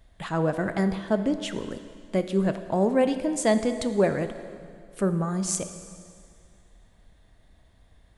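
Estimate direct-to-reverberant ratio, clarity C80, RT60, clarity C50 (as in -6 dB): 9.0 dB, 11.5 dB, 2.2 s, 10.0 dB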